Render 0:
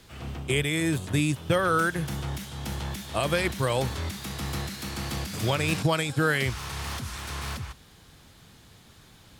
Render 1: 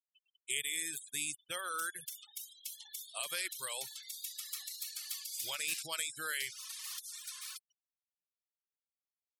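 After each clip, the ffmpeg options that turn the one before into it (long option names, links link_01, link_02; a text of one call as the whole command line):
ffmpeg -i in.wav -af "aderivative,afftfilt=real='re*gte(hypot(re,im),0.00708)':imag='im*gte(hypot(re,im),0.00708)':win_size=1024:overlap=0.75" out.wav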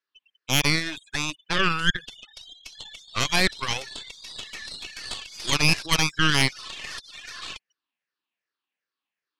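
ffmpeg -i in.wav -af "afftfilt=real='re*pow(10,10/40*sin(2*PI*(0.55*log(max(b,1)*sr/1024/100)/log(2)-(-2.6)*(pts-256)/sr)))':imag='im*pow(10,10/40*sin(2*PI*(0.55*log(max(b,1)*sr/1024/100)/log(2)-(-2.6)*(pts-256)/sr)))':win_size=1024:overlap=0.75,highpass=200,equalizer=frequency=300:width_type=q:width=4:gain=5,equalizer=frequency=630:width_type=q:width=4:gain=-5,equalizer=frequency=1100:width_type=q:width=4:gain=5,equalizer=frequency=1700:width_type=q:width=4:gain=8,equalizer=frequency=2700:width_type=q:width=4:gain=6,lowpass=frequency=4700:width=0.5412,lowpass=frequency=4700:width=1.3066,aeval=exprs='0.133*(cos(1*acos(clip(val(0)/0.133,-1,1)))-cos(1*PI/2))+0.0531*(cos(6*acos(clip(val(0)/0.133,-1,1)))-cos(6*PI/2))':channel_layout=same,volume=8.5dB" out.wav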